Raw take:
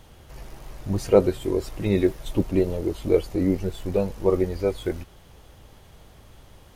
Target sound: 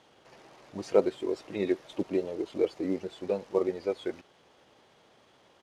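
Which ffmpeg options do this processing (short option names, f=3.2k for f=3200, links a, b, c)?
-af "acrusher=bits=8:mode=log:mix=0:aa=0.000001,highpass=280,lowpass=5.6k,atempo=1.2,volume=-5dB"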